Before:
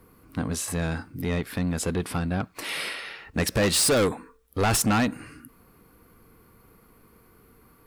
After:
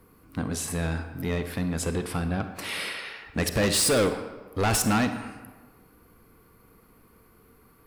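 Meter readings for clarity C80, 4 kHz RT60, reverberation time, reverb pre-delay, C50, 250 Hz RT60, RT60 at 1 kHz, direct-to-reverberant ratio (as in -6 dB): 11.0 dB, 0.85 s, 1.4 s, 34 ms, 9.0 dB, 1.2 s, 1.4 s, 8.5 dB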